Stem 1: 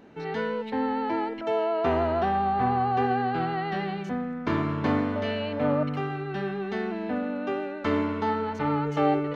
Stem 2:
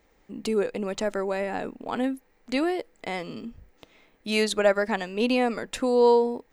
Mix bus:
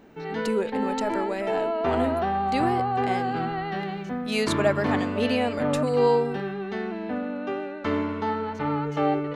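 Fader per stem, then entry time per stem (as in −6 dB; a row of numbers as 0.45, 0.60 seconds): −0.5, −2.0 decibels; 0.00, 0.00 seconds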